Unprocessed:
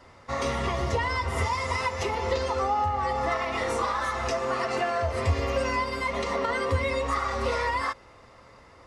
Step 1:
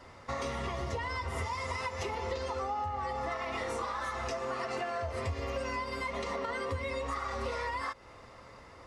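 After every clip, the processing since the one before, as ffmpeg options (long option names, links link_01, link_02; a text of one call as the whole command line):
ffmpeg -i in.wav -af "acompressor=threshold=-35dB:ratio=3" out.wav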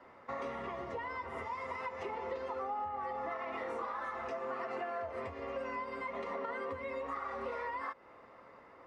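ffmpeg -i in.wav -filter_complex "[0:a]acrossover=split=180 2500:gain=0.141 1 0.126[link_01][link_02][link_03];[link_01][link_02][link_03]amix=inputs=3:normalize=0,volume=-3dB" out.wav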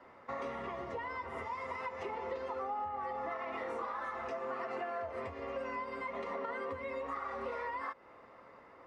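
ffmpeg -i in.wav -af anull out.wav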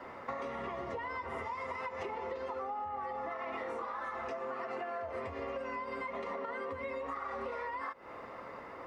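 ffmpeg -i in.wav -af "acompressor=threshold=-47dB:ratio=6,volume=10dB" out.wav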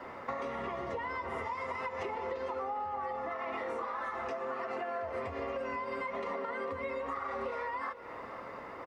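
ffmpeg -i in.wav -af "aecho=1:1:449:0.2,volume=2dB" out.wav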